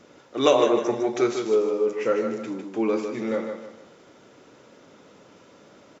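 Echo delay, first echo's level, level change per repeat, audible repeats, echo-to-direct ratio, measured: 0.153 s, -7.0 dB, -9.0 dB, 3, -6.5 dB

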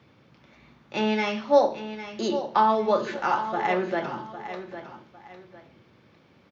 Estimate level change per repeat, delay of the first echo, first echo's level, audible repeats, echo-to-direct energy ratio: -10.5 dB, 0.804 s, -11.5 dB, 2, -11.0 dB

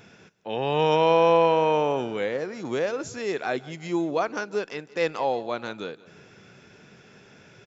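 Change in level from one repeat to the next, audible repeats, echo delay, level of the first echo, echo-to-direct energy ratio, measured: -7.0 dB, 3, 0.174 s, -20.5 dB, -19.5 dB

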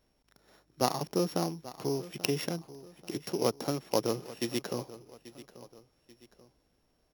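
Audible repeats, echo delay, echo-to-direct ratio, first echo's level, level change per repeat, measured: 2, 0.836 s, -16.5 dB, -17.0 dB, -7.5 dB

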